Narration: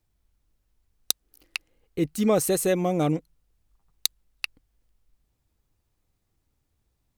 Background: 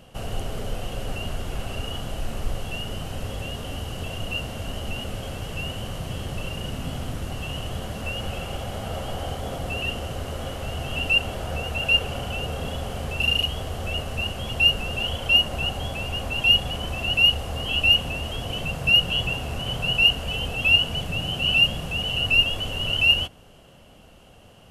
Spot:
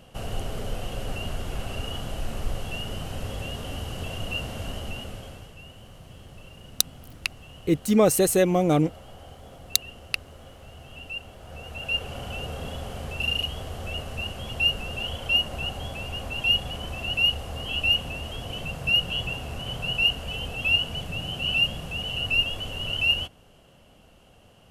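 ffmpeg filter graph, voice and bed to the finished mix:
ffmpeg -i stem1.wav -i stem2.wav -filter_complex "[0:a]adelay=5700,volume=3dB[link_01];[1:a]volume=9dB,afade=type=out:start_time=4.65:duration=0.9:silence=0.211349,afade=type=in:start_time=11.39:duration=0.95:silence=0.298538[link_02];[link_01][link_02]amix=inputs=2:normalize=0" out.wav

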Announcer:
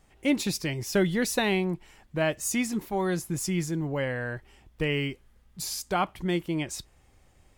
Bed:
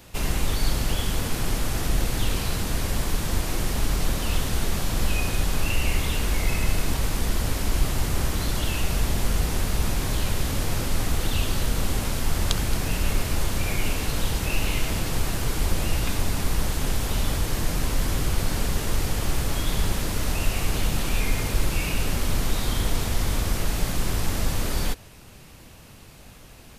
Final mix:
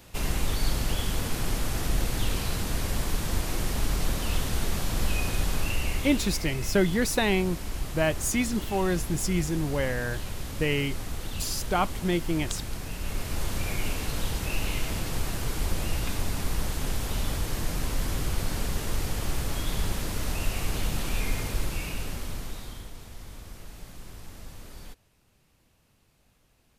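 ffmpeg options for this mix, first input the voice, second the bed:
ffmpeg -i stem1.wav -i stem2.wav -filter_complex "[0:a]adelay=5800,volume=1dB[link_01];[1:a]volume=2.5dB,afade=type=out:start_time=5.5:duration=0.96:silence=0.446684,afade=type=in:start_time=12.97:duration=0.55:silence=0.530884,afade=type=out:start_time=21.32:duration=1.59:silence=0.188365[link_02];[link_01][link_02]amix=inputs=2:normalize=0" out.wav

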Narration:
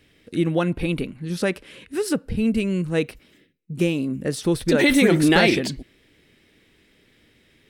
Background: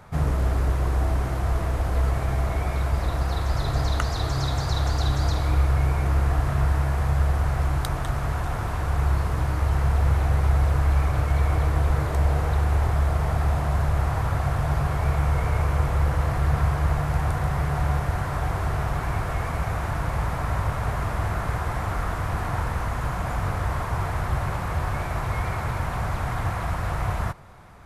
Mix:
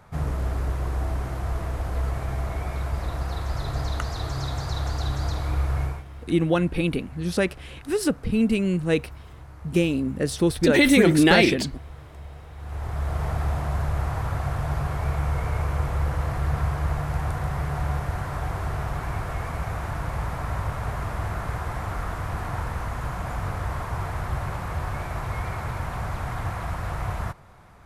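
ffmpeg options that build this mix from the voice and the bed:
ffmpeg -i stem1.wav -i stem2.wav -filter_complex "[0:a]adelay=5950,volume=0dB[link_01];[1:a]volume=12.5dB,afade=type=out:start_time=5.82:duration=0.22:silence=0.16788,afade=type=in:start_time=12.56:duration=0.68:silence=0.149624[link_02];[link_01][link_02]amix=inputs=2:normalize=0" out.wav

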